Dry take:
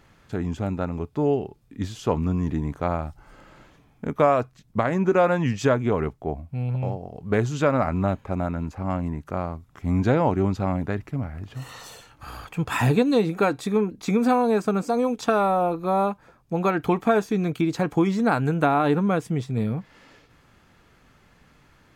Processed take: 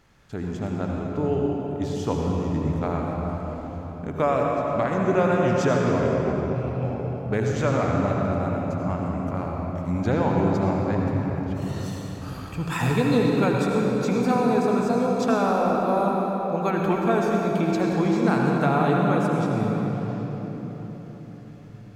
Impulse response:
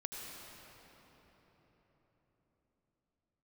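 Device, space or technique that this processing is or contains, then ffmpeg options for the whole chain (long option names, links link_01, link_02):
cathedral: -filter_complex "[1:a]atrim=start_sample=2205[link_01];[0:a][link_01]afir=irnorm=-1:irlink=0,equalizer=frequency=5700:width=1.5:gain=3.5"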